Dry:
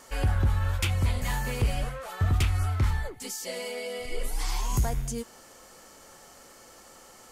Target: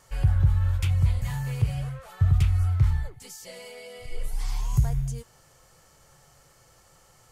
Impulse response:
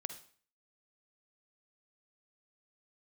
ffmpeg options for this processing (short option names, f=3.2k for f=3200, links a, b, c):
-filter_complex "[0:a]asettb=1/sr,asplit=3[a][b][c];[a]atrim=end=1.274[d];[b]atrim=start=1.27:end=1.99,asetpts=PTS-STARTPTS,afade=t=in:d=0.004:c=qsin,afade=t=out:st=0.716:d=0.004:c=qsin,highpass=79[e];[c]atrim=start=1.986[f];[d][e]acrossfade=d=0.004:c1=hsin:c2=qsin[g];[g][f]acrossfade=d=0.004:c1=qsin:c2=hsin,lowshelf=f=180:t=q:w=3:g=8.5,volume=-7dB"